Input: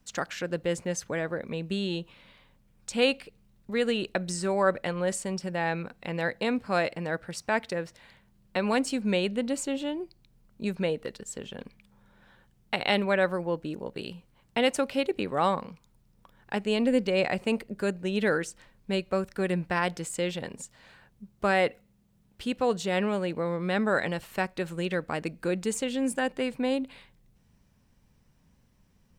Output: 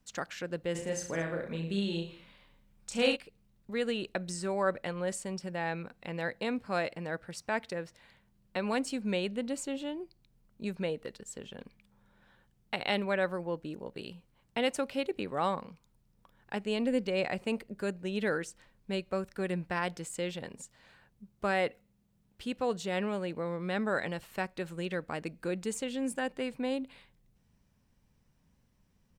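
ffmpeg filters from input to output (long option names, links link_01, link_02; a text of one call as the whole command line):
ffmpeg -i in.wav -filter_complex "[0:a]asplit=3[link_01][link_02][link_03];[link_01]afade=type=out:start_time=0.74:duration=0.02[link_04];[link_02]aecho=1:1:30|66|109.2|161|223.2:0.631|0.398|0.251|0.158|0.1,afade=type=in:start_time=0.74:duration=0.02,afade=type=out:start_time=3.15:duration=0.02[link_05];[link_03]afade=type=in:start_time=3.15:duration=0.02[link_06];[link_04][link_05][link_06]amix=inputs=3:normalize=0,volume=-5.5dB" out.wav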